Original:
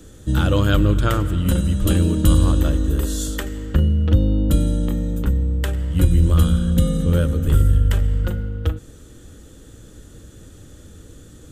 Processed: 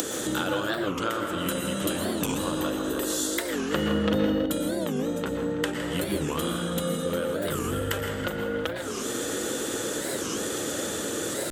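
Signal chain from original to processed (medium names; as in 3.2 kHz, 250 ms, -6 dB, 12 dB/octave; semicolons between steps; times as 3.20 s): 1.96–2.40 s: comb 1.1 ms, depth 57%; hard clipper -7.5 dBFS, distortion -21 dB; in parallel at +2 dB: upward compressor, threshold -17 dBFS; on the sum: high-pass 390 Hz 12 dB/octave; compression 6:1, threshold -32 dBFS, peak gain reduction 19 dB; 5.07–5.80 s: low-pass 9.3 kHz 12 dB/octave; tape echo 163 ms, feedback 83%, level -10 dB, low-pass 4.6 kHz; on a send at -4 dB: reverberation RT60 0.90 s, pre-delay 108 ms; 3.72–4.46 s: on the sum: waveshaping leveller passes 1; warped record 45 rpm, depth 250 cents; trim +4.5 dB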